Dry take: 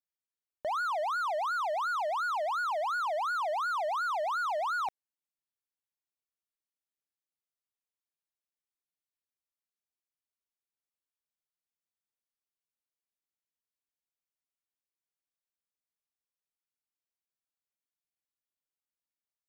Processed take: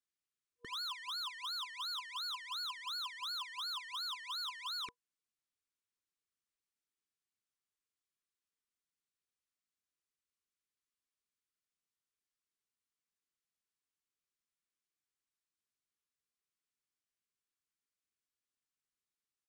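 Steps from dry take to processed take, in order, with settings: downsampling 22050 Hz; FFT band-reject 480–1000 Hz; wavefolder -35 dBFS

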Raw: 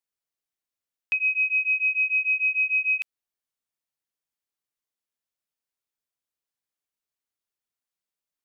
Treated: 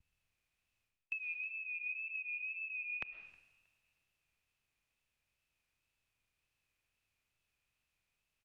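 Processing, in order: per-bin compression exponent 0.6; wow and flutter 64 cents; reverse; compressor 10:1, threshold -37 dBFS, peak gain reduction 17 dB; reverse; treble ducked by the level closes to 1800 Hz, closed at -39.5 dBFS; frequency-shifting echo 0.316 s, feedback 54%, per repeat +53 Hz, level -19 dB; digital reverb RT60 1.4 s, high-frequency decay 0.9×, pre-delay 85 ms, DRR 8.5 dB; three-band expander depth 70%; gain +1.5 dB

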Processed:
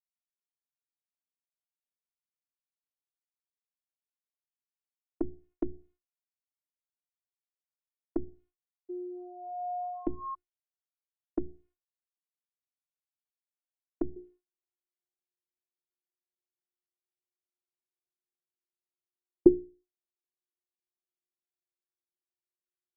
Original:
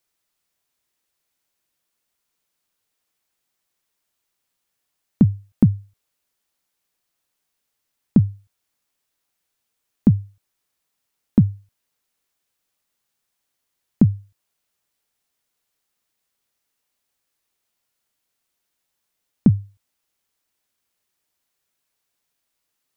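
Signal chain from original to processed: air absorption 360 m; notches 60/120/180/240/300/360/420/480/540/600 Hz; gate with hold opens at -46 dBFS; 8.89–10.35 painted sound rise 390–1100 Hz -29 dBFS; low-pass opened by the level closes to 1000 Hz, open at -15.5 dBFS; HPF 200 Hz 12 dB/oct; robotiser 359 Hz; bell 370 Hz -2.5 dB 0.96 oct, from 14.16 s +15 dB; treble ducked by the level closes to 370 Hz, closed at -24 dBFS; gain -4.5 dB

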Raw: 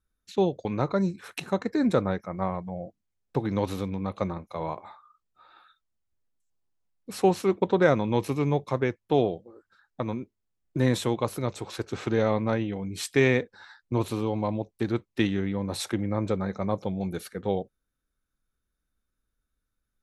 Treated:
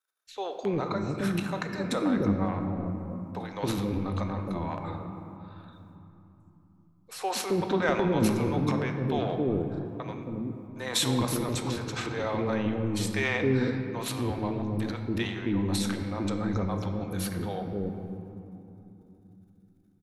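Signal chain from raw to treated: transient shaper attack -1 dB, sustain +11 dB; bands offset in time highs, lows 0.27 s, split 490 Hz; on a send at -5.5 dB: reverb RT60 3.3 s, pre-delay 3 ms; on the sum: gain -3 dB

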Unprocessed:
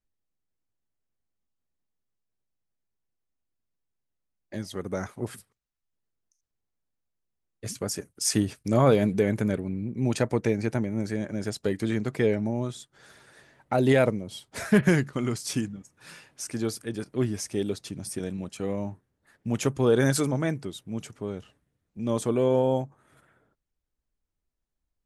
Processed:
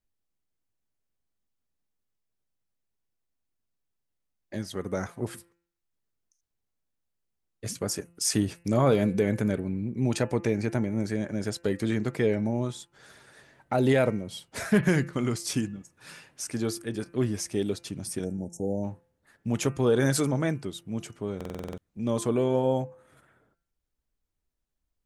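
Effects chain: spectral delete 18.25–18.84, 910–5300 Hz; in parallel at -2 dB: limiter -17.5 dBFS, peak gain reduction 9 dB; on the sum: de-hum 171.3 Hz, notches 17; stuck buffer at 21.36, samples 2048, times 8; gain -4.5 dB

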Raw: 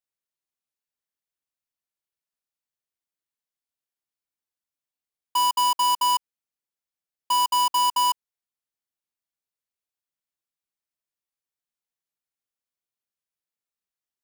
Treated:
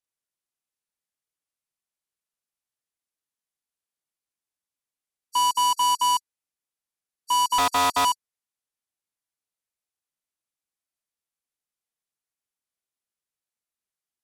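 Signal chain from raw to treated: nonlinear frequency compression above 4000 Hz 1.5:1; 7.58–8.05 Doppler distortion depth 0.61 ms

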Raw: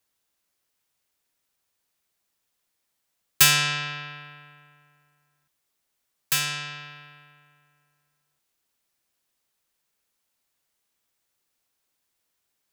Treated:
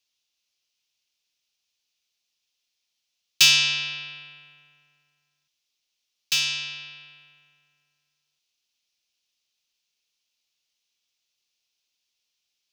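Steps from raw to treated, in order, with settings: band shelf 3900 Hz +15.5 dB; gain -10.5 dB

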